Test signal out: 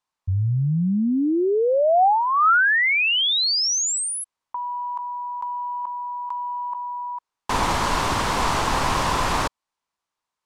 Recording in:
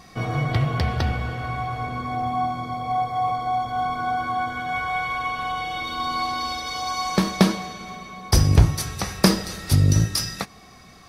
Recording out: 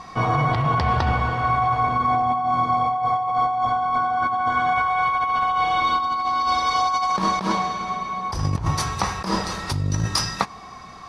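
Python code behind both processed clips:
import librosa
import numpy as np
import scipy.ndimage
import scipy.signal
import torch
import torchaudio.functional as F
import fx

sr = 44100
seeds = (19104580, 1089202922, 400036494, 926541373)

y = scipy.signal.sosfilt(scipy.signal.butter(2, 7500.0, 'lowpass', fs=sr, output='sos'), x)
y = fx.peak_eq(y, sr, hz=1000.0, db=13.5, octaves=0.72)
y = fx.over_compress(y, sr, threshold_db=-21.0, ratio=-1.0)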